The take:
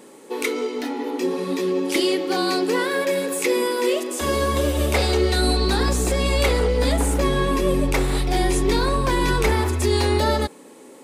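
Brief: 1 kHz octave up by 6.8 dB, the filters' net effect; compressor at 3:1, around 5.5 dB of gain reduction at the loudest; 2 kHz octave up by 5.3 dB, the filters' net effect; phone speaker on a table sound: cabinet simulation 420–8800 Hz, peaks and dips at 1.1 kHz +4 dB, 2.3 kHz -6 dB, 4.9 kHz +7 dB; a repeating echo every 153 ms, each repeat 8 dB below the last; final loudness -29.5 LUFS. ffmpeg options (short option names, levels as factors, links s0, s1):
-af "equalizer=f=1000:t=o:g=3.5,equalizer=f=2000:t=o:g=7.5,acompressor=threshold=0.1:ratio=3,highpass=f=420:w=0.5412,highpass=f=420:w=1.3066,equalizer=f=1100:t=q:w=4:g=4,equalizer=f=2300:t=q:w=4:g=-6,equalizer=f=4900:t=q:w=4:g=7,lowpass=f=8800:w=0.5412,lowpass=f=8800:w=1.3066,aecho=1:1:153|306|459|612|765:0.398|0.159|0.0637|0.0255|0.0102,volume=0.501"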